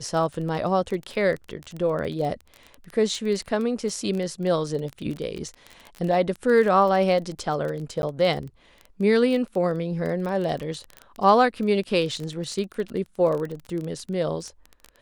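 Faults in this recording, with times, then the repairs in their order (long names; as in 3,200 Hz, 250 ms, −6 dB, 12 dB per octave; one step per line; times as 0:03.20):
surface crackle 21 per second −28 dBFS
0:08.02–0:08.03: drop-out 11 ms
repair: click removal
repair the gap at 0:08.02, 11 ms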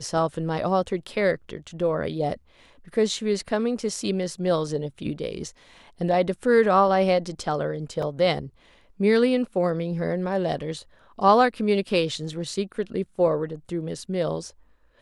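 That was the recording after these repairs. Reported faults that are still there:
none of them is left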